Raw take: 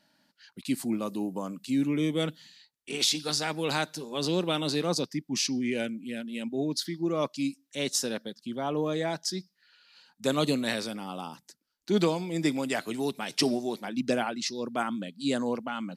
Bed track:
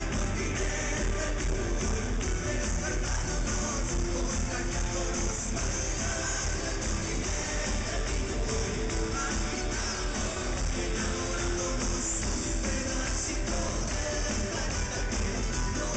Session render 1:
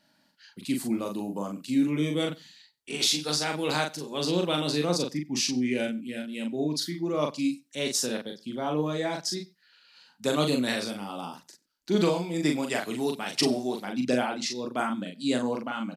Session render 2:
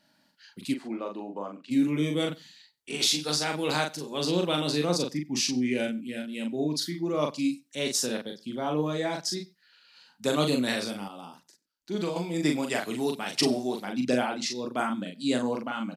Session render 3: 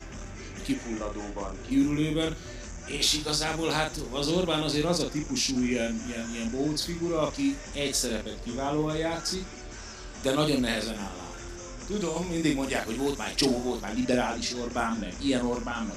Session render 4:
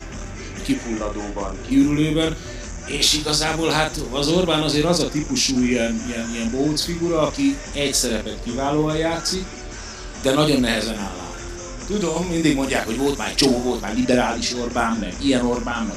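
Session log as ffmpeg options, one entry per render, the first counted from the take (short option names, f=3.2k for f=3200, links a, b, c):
-filter_complex "[0:a]asplit=2[a][b];[b]adelay=40,volume=-4dB[c];[a][c]amix=inputs=2:normalize=0,asplit=2[d][e];[e]adelay=93.29,volume=-23dB,highshelf=f=4k:g=-2.1[f];[d][f]amix=inputs=2:normalize=0"
-filter_complex "[0:a]asplit=3[a][b][c];[a]afade=t=out:st=0.73:d=0.02[d];[b]highpass=350,lowpass=2.5k,afade=t=in:st=0.73:d=0.02,afade=t=out:st=1.7:d=0.02[e];[c]afade=t=in:st=1.7:d=0.02[f];[d][e][f]amix=inputs=3:normalize=0,asplit=3[g][h][i];[g]atrim=end=11.082[j];[h]atrim=start=11.078:end=12.162,asetpts=PTS-STARTPTS,volume=-7dB[k];[i]atrim=start=12.158[l];[j][k]acrossfade=d=0.004:c1=hsin:c2=hsin[m];[m][l]acrossfade=d=0.004:c1=hsin:c2=hsin"
-filter_complex "[1:a]volume=-10.5dB[a];[0:a][a]amix=inputs=2:normalize=0"
-af "volume=8dB,alimiter=limit=-3dB:level=0:latency=1"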